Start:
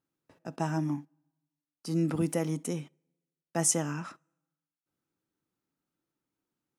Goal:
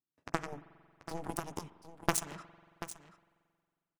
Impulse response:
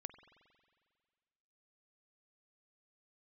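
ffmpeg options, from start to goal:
-filter_complex "[0:a]acompressor=threshold=-32dB:ratio=5,aeval=exprs='0.0794*(cos(1*acos(clip(val(0)/0.0794,-1,1)))-cos(1*PI/2))+0.0316*(cos(3*acos(clip(val(0)/0.0794,-1,1)))-cos(3*PI/2))+0.002*(cos(4*acos(clip(val(0)/0.0794,-1,1)))-cos(4*PI/2))+0.000501*(cos(6*acos(clip(val(0)/0.0794,-1,1)))-cos(6*PI/2))':channel_layout=same,dynaudnorm=framelen=170:gausssize=7:maxgain=10dB,atempo=1.7,bandreject=frequency=520:width=12,aecho=1:1:735:0.224,asplit=2[link_01][link_02];[1:a]atrim=start_sample=2205[link_03];[link_02][link_03]afir=irnorm=-1:irlink=0,volume=5.5dB[link_04];[link_01][link_04]amix=inputs=2:normalize=0,volume=-6dB"

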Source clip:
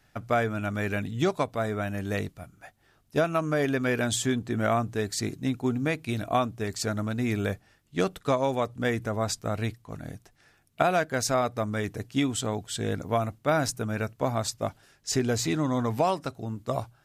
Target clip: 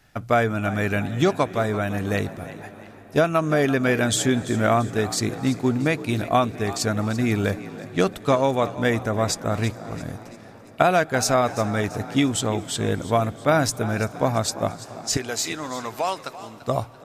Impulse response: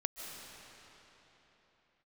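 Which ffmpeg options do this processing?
-filter_complex "[0:a]asettb=1/sr,asplit=3[link_01][link_02][link_03];[link_01]atrim=end=15.174[link_04];[link_02]atrim=start=15.17:end=16.62,asetpts=PTS-STARTPTS,afade=type=in:duration=0.004:curve=qsin,afade=type=out:start_time=1.446:duration=0.004:curve=qsin,highpass=frequency=1200:poles=1[link_05];[link_03]atrim=start=16.616[link_06];[link_04][link_05]acrossfade=duration=0.004:curve1=hsin:curve2=qsin[link_07];[link_07][link_06]acrossfade=duration=0.004:curve1=qsin:curve2=hsin,asplit=5[link_08][link_09][link_10][link_11][link_12];[link_09]adelay=339,afreqshift=60,volume=-15.5dB[link_13];[link_10]adelay=678,afreqshift=120,volume=-22.4dB[link_14];[link_11]adelay=1017,afreqshift=180,volume=-29.4dB[link_15];[link_12]adelay=1356,afreqshift=240,volume=-36.3dB[link_16];[link_08][link_13][link_14][link_15][link_16]amix=inputs=5:normalize=0,asplit=2[link_17][link_18];[1:a]atrim=start_sample=2205,asetrate=27342,aresample=44100[link_19];[link_18][link_19]afir=irnorm=-1:irlink=0,volume=-19dB[link_20];[link_17][link_20]amix=inputs=2:normalize=0,volume=4.5dB"

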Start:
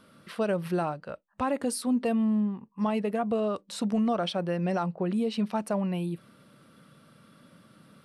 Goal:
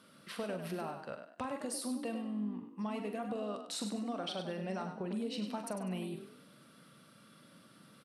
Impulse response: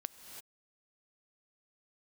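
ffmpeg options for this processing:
-filter_complex "[0:a]highpass=110,equalizer=frequency=7400:width=0.31:gain=6,acompressor=threshold=-31dB:ratio=6,asplit=2[link_01][link_02];[link_02]adelay=43,volume=-9dB[link_03];[link_01][link_03]amix=inputs=2:normalize=0,asplit=2[link_04][link_05];[link_05]asplit=4[link_06][link_07][link_08][link_09];[link_06]adelay=99,afreqshift=40,volume=-8dB[link_10];[link_07]adelay=198,afreqshift=80,volume=-17.6dB[link_11];[link_08]adelay=297,afreqshift=120,volume=-27.3dB[link_12];[link_09]adelay=396,afreqshift=160,volume=-36.9dB[link_13];[link_10][link_11][link_12][link_13]amix=inputs=4:normalize=0[link_14];[link_04][link_14]amix=inputs=2:normalize=0,volume=-5.5dB"

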